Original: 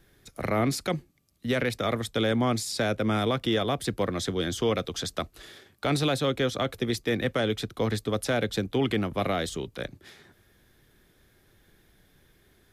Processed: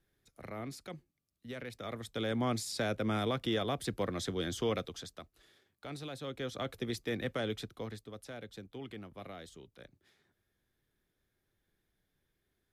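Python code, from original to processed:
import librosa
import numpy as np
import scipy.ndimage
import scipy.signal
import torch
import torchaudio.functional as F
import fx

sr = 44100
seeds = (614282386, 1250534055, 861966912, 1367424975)

y = fx.gain(x, sr, db=fx.line((1.63, -17.0), (2.47, -7.0), (4.77, -7.0), (5.2, -18.0), (6.08, -18.0), (6.68, -9.0), (7.58, -9.0), (8.08, -19.5)))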